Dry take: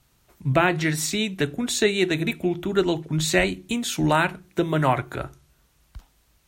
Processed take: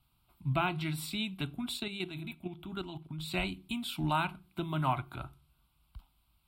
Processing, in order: 1.77–3.34 s: level held to a coarse grid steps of 10 dB; static phaser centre 1.8 kHz, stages 6; trim -7.5 dB

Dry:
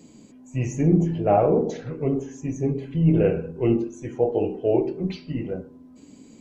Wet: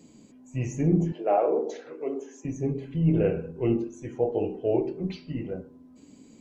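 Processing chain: 1.12–2.45 s: high-pass 320 Hz 24 dB/octave; trim -4 dB

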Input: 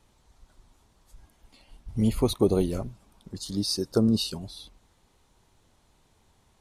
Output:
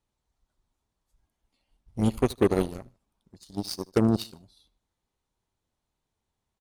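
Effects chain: Chebyshev shaper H 7 -18 dB, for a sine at -10 dBFS; feedback delay 77 ms, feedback 33%, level -22.5 dB

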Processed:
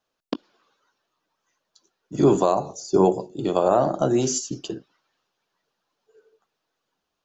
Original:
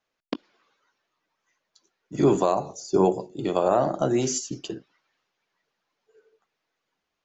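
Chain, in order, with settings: peaking EQ 2.1 kHz -8.5 dB 0.48 oct; trim +2.5 dB

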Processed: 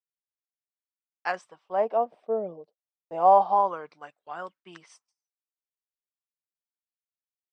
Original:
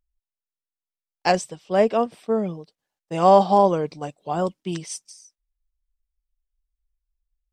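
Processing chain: LFO band-pass sine 0.29 Hz 560–1600 Hz; gate with hold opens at -54 dBFS

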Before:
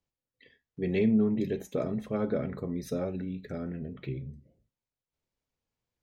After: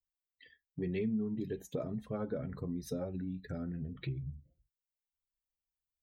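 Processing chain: expander on every frequency bin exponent 1.5; bass shelf 250 Hz +5 dB; compression 3:1, threshold -47 dBFS, peak gain reduction 20.5 dB; trim +8 dB

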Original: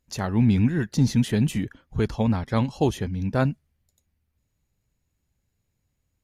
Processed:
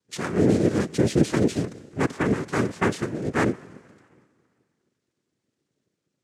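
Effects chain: Schroeder reverb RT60 2.1 s, combs from 29 ms, DRR 18.5 dB; noise-vocoded speech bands 3

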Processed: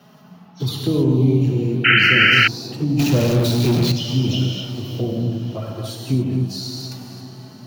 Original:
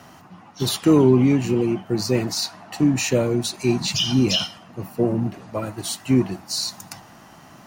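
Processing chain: high-pass 90 Hz 24 dB/octave; touch-sensitive flanger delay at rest 5.2 ms, full sweep at -15 dBFS; gated-style reverb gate 300 ms flat, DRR -0.5 dB; 2.99–3.92 s: power-law waveshaper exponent 0.35; bass shelf 320 Hz -3.5 dB; echo that smears into a reverb 519 ms, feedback 51%, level -15.5 dB; in parallel at +2.5 dB: compression, threshold -26 dBFS, peak gain reduction 15 dB; on the sum: graphic EQ 125/1000/2000/4000/8000 Hz +9/-4/-6/+3/-12 dB; 1.84–2.48 s: painted sound noise 1.3–3.1 kHz -7 dBFS; trim -6.5 dB

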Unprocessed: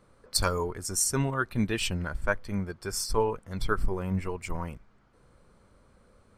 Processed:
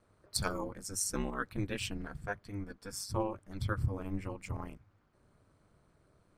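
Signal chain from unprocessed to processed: 1.86–3.13 s: comb of notches 470 Hz; ring modulator 100 Hz; trim -5 dB

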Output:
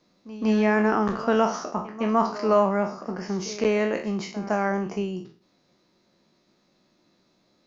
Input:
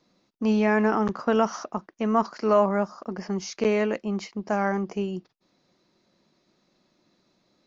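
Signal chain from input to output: spectral sustain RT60 0.43 s; on a send: reverse echo 160 ms -16.5 dB

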